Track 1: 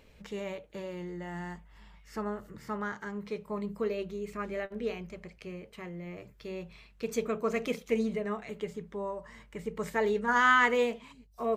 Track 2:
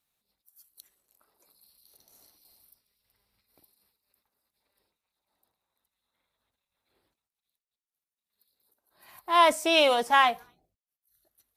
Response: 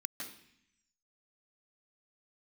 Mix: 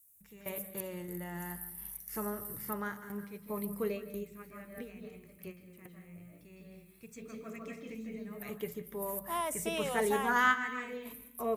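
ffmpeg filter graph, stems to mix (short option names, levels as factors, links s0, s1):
-filter_complex "[0:a]agate=range=0.1:threshold=0.002:ratio=16:detection=peak,volume=0.668,asplit=2[s0][s1];[s1]volume=0.355[s2];[1:a]acrossover=split=740|4000[s3][s4][s5];[s3]acompressor=threshold=0.0316:ratio=4[s6];[s4]acompressor=threshold=0.0316:ratio=4[s7];[s5]acompressor=threshold=0.00112:ratio=4[s8];[s6][s7][s8]amix=inputs=3:normalize=0,aexciter=amount=12.9:drive=8.2:freq=6600,volume=0.376,asplit=2[s9][s10];[s10]apad=whole_len=509909[s11];[s0][s11]sidechaingate=range=0.0224:threshold=0.00112:ratio=16:detection=peak[s12];[2:a]atrim=start_sample=2205[s13];[s2][s13]afir=irnorm=-1:irlink=0[s14];[s12][s9][s14]amix=inputs=3:normalize=0,equalizer=f=100:t=o:w=1.1:g=8"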